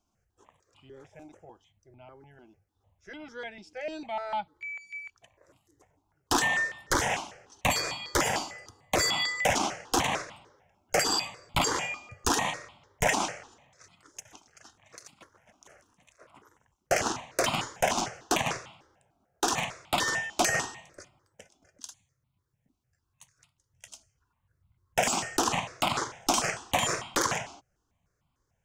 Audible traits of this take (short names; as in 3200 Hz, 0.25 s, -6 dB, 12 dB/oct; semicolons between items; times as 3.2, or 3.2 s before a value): notches that jump at a steady rate 6.7 Hz 490–1700 Hz